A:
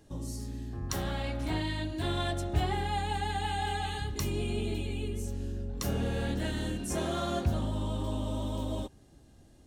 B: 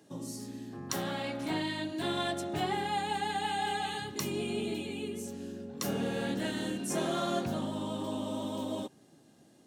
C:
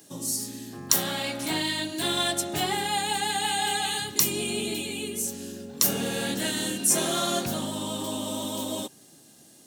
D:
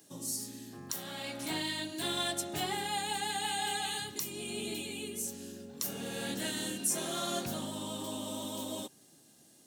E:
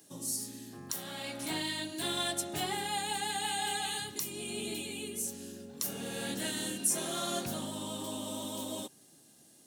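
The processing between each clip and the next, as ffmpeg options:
-af "highpass=f=150:w=0.5412,highpass=f=150:w=1.3066,volume=1.12"
-af "crystalizer=i=4.5:c=0,volume=1.33"
-af "alimiter=limit=0.282:level=0:latency=1:release=498,volume=0.422"
-af "equalizer=f=10000:w=2.9:g=3.5"

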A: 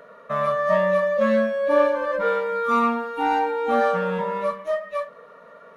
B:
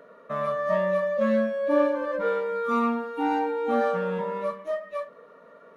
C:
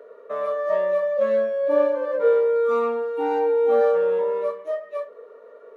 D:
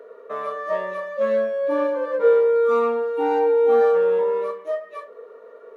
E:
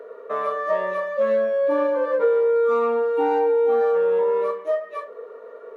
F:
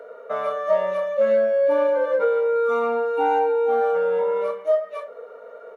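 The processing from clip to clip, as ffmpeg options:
-af "equalizer=f=310:w=1.4:g=9.5,volume=0.473"
-af "highpass=f=430:t=q:w=4.9,volume=0.708"
-af "bandreject=f=580:w=12,volume=1.33"
-af "equalizer=f=800:w=0.32:g=4,acompressor=threshold=0.141:ratio=5"
-af "aecho=1:1:1.4:0.66"

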